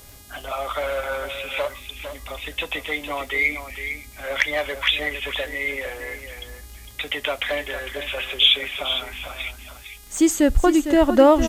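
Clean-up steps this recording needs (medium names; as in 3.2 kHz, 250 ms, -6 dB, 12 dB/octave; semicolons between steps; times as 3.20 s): de-click; de-hum 410.8 Hz, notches 36; noise reduction 24 dB, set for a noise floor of -41 dBFS; inverse comb 455 ms -9.5 dB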